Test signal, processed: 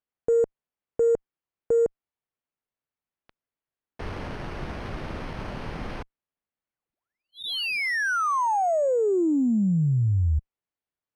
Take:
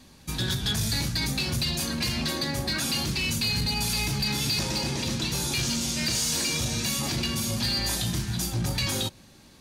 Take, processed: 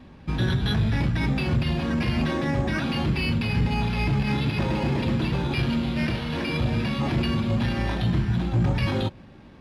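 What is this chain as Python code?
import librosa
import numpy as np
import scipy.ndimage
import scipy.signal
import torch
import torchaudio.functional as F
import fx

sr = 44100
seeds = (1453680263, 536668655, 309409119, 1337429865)

y = np.repeat(scipy.signal.resample_poly(x, 1, 6), 6)[:len(x)]
y = fx.cheby_harmonics(y, sr, harmonics=(5, 8), levels_db=(-32, -44), full_scale_db=-16.5)
y = fx.spacing_loss(y, sr, db_at_10k=21)
y = y * 10.0 ** (6.5 / 20.0)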